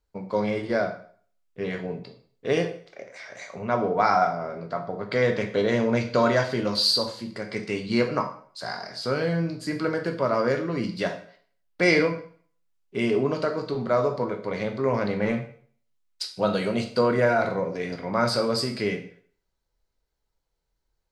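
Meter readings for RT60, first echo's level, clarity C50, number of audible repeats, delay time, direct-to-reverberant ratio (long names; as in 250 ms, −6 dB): 0.50 s, no echo audible, 10.0 dB, no echo audible, no echo audible, 4.5 dB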